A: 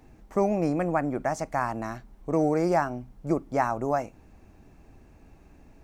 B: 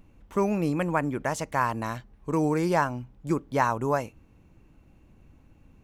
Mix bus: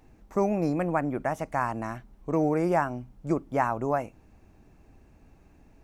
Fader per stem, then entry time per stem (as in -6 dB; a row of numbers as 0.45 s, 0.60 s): -3.5 dB, -11.0 dB; 0.00 s, 0.00 s